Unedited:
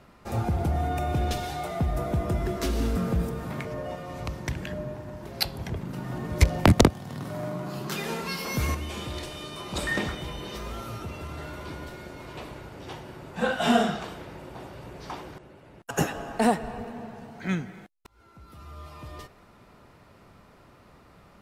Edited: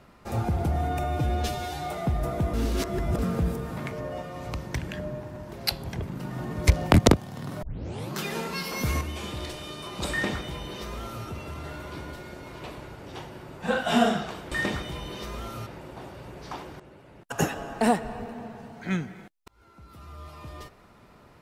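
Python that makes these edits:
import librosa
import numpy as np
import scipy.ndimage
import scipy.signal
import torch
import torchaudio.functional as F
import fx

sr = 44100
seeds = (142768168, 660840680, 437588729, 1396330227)

y = fx.edit(x, sr, fx.stretch_span(start_s=1.04, length_s=0.53, factor=1.5),
    fx.reverse_span(start_s=2.27, length_s=0.65),
    fx.tape_start(start_s=7.36, length_s=0.5),
    fx.duplicate(start_s=9.84, length_s=1.15, to_s=14.25), tone=tone)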